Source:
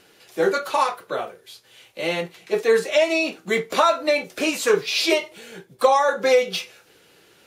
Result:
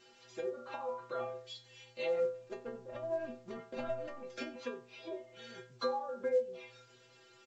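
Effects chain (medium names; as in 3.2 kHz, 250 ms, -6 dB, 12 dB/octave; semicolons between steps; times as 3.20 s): 2.23–4.23 s: median filter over 41 samples; low-pass that closes with the level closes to 590 Hz, closed at -18 dBFS; compression 6:1, threshold -26 dBFS, peak gain reduction 12.5 dB; inharmonic resonator 120 Hz, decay 0.59 s, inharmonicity 0.008; delay 93 ms -21 dB; trim +5.5 dB; A-law 128 kbps 16 kHz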